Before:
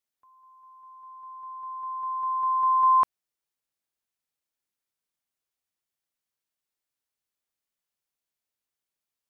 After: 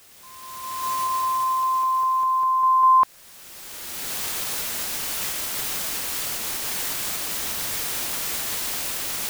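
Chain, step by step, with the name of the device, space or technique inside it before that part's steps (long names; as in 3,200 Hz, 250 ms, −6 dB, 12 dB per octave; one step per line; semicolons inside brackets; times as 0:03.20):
cheap recorder with automatic gain (white noise bed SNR 24 dB; camcorder AGC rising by 21 dB per second)
level +4 dB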